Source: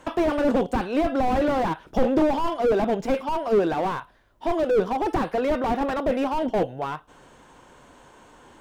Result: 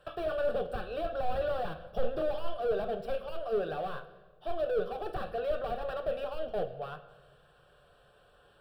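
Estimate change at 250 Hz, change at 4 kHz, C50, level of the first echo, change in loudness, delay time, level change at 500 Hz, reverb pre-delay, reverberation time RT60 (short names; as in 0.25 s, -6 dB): -21.0 dB, -8.5 dB, 12.5 dB, none, -10.5 dB, none, -8.5 dB, 7 ms, 1.3 s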